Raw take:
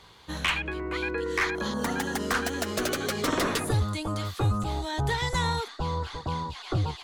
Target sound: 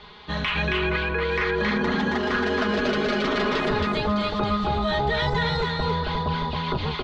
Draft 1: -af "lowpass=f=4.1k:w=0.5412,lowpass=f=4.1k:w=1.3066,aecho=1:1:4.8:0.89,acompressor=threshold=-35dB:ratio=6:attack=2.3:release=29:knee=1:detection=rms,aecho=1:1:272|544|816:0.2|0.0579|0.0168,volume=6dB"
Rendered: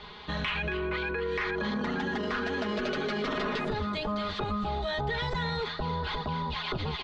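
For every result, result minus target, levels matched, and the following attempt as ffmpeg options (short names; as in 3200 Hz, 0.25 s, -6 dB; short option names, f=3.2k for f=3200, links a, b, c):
echo-to-direct -12 dB; compressor: peak gain reduction +5.5 dB
-af "lowpass=f=4.1k:w=0.5412,lowpass=f=4.1k:w=1.3066,aecho=1:1:4.8:0.89,acompressor=threshold=-35dB:ratio=6:attack=2.3:release=29:knee=1:detection=rms,aecho=1:1:272|544|816|1088:0.794|0.23|0.0668|0.0194,volume=6dB"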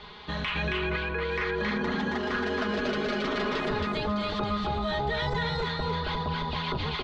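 compressor: peak gain reduction +5.5 dB
-af "lowpass=f=4.1k:w=0.5412,lowpass=f=4.1k:w=1.3066,aecho=1:1:4.8:0.89,acompressor=threshold=-28.5dB:ratio=6:attack=2.3:release=29:knee=1:detection=rms,aecho=1:1:272|544|816|1088:0.794|0.23|0.0668|0.0194,volume=6dB"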